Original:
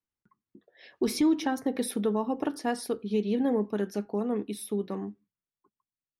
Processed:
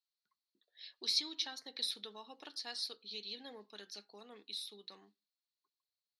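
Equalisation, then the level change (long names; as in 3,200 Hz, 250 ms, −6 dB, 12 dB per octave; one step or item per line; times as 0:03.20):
resonant band-pass 4,200 Hz, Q 8.2
+13.0 dB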